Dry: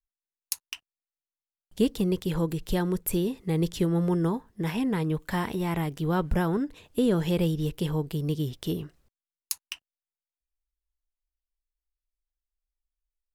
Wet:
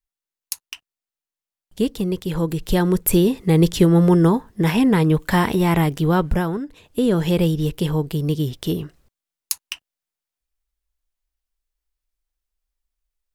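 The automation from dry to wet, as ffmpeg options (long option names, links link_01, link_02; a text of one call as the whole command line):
ffmpeg -i in.wav -af "volume=18.5dB,afade=type=in:start_time=2.24:duration=0.95:silence=0.398107,afade=type=out:start_time=5.86:duration=0.76:silence=0.266073,afade=type=in:start_time=6.62:duration=0.67:silence=0.421697" out.wav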